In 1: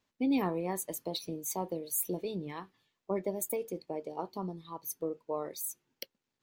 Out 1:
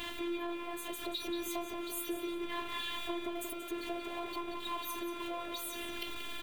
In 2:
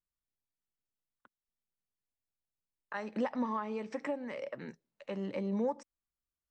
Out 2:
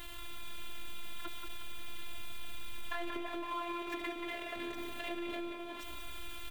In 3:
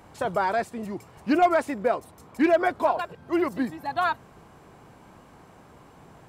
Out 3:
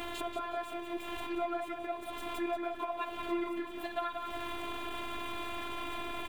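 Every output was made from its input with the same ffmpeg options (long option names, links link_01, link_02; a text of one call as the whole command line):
ffmpeg -i in.wav -filter_complex "[0:a]aeval=exprs='val(0)+0.5*0.0237*sgn(val(0))':channel_layout=same,highshelf=frequency=4200:width_type=q:width=3:gain=-7,acompressor=threshold=-32dB:ratio=12,afftfilt=real='hypot(re,im)*cos(PI*b)':imag='0':win_size=512:overlap=0.75,asplit=2[link_01][link_02];[link_02]adelay=182,lowpass=frequency=4400:poles=1,volume=-5dB,asplit=2[link_03][link_04];[link_04]adelay=182,lowpass=frequency=4400:poles=1,volume=0.53,asplit=2[link_05][link_06];[link_06]adelay=182,lowpass=frequency=4400:poles=1,volume=0.53,asplit=2[link_07][link_08];[link_08]adelay=182,lowpass=frequency=4400:poles=1,volume=0.53,asplit=2[link_09][link_10];[link_10]adelay=182,lowpass=frequency=4400:poles=1,volume=0.53,asplit=2[link_11][link_12];[link_12]adelay=182,lowpass=frequency=4400:poles=1,volume=0.53,asplit=2[link_13][link_14];[link_14]adelay=182,lowpass=frequency=4400:poles=1,volume=0.53[link_15];[link_03][link_05][link_07][link_09][link_11][link_13][link_15]amix=inputs=7:normalize=0[link_16];[link_01][link_16]amix=inputs=2:normalize=0,volume=1dB" out.wav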